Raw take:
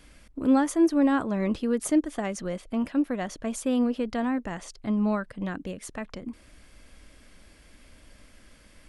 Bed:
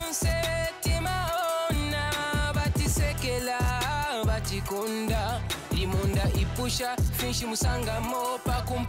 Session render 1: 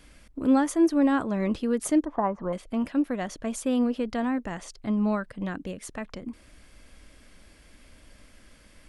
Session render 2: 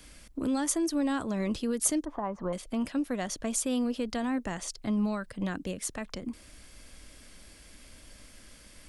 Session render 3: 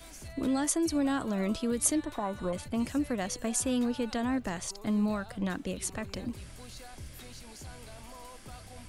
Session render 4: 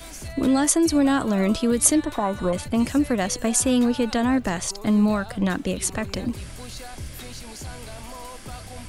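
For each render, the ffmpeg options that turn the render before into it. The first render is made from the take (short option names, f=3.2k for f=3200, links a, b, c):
-filter_complex "[0:a]asettb=1/sr,asplit=3[a][b][c];[a]atrim=end=2.054[d];[b]atrim=start=2.05:end=2.53,asetpts=PTS-STARTPTS,afade=t=in:d=0.004:c=qsin,afade=t=out:st=0.476:d=0.004:c=qsin,lowpass=f=1k:t=q:w=5.8[e];[c]atrim=start=2.526[f];[d][e]acrossfade=d=0.004:c1=hsin:c2=qsin[g];[g][f]acrossfade=d=0.004:c1=qsin:c2=hsin"
-filter_complex "[0:a]acrossover=split=110|3800[a][b][c];[b]alimiter=limit=-23dB:level=0:latency=1:release=227[d];[c]acontrast=88[e];[a][d][e]amix=inputs=3:normalize=0"
-filter_complex "[1:a]volume=-20dB[a];[0:a][a]amix=inputs=2:normalize=0"
-af "volume=9.5dB"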